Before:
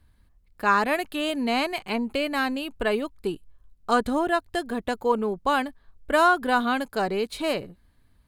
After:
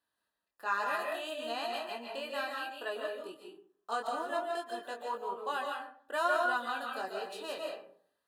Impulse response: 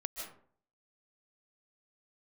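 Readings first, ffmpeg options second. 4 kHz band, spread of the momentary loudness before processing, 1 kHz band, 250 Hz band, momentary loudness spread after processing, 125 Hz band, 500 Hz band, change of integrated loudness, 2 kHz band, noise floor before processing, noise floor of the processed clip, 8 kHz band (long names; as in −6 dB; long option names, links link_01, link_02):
−9.5 dB, 9 LU, −9.5 dB, −21.0 dB, 10 LU, below −25 dB, −10.5 dB, −10.5 dB, −9.0 dB, −61 dBFS, below −85 dBFS, −10.0 dB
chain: -filter_complex "[0:a]highpass=530,flanger=delay=20:depth=2.3:speed=1.1,asuperstop=centerf=2200:order=20:qfactor=7[link_01];[1:a]atrim=start_sample=2205[link_02];[link_01][link_02]afir=irnorm=-1:irlink=0,volume=-6dB"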